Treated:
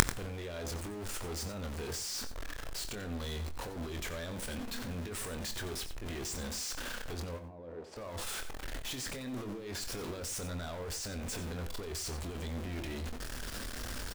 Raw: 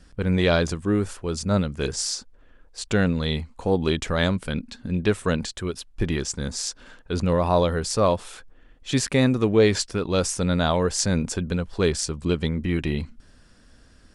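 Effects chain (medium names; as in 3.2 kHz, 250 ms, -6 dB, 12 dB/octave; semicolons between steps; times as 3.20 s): jump at every zero crossing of -29.5 dBFS; peaking EQ 160 Hz -11 dB 0.76 oct; de-hum 168.2 Hz, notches 5; compressor with a negative ratio -28 dBFS, ratio -1; waveshaping leveller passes 5; 7.38–7.96 s: band-pass filter 170 Hz -> 620 Hz, Q 1.2; inverted gate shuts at -23 dBFS, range -35 dB; doubling 24 ms -8.5 dB; delay 90 ms -12 dB; on a send at -22 dB: reverberation RT60 0.60 s, pre-delay 49 ms; on the sum: trim +10 dB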